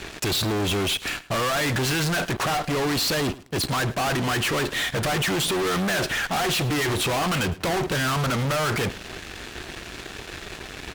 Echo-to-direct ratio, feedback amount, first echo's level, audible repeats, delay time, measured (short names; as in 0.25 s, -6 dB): -19.0 dB, 20%, -19.0 dB, 2, 0.107 s